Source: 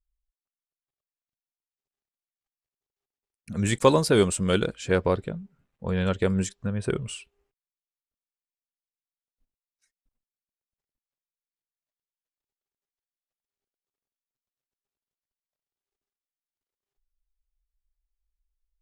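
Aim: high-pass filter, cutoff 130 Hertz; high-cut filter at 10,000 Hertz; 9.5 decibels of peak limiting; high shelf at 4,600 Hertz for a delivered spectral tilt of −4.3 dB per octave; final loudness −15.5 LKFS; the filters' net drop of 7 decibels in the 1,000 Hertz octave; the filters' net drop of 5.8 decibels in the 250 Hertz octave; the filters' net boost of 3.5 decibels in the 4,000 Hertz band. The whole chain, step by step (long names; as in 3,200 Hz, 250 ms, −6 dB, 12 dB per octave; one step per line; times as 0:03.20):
high-pass filter 130 Hz
low-pass filter 10,000 Hz
parametric band 250 Hz −7.5 dB
parametric band 1,000 Hz −8 dB
parametric band 4,000 Hz +7.5 dB
high-shelf EQ 4,600 Hz −5 dB
level +15 dB
brickwall limiter −0.5 dBFS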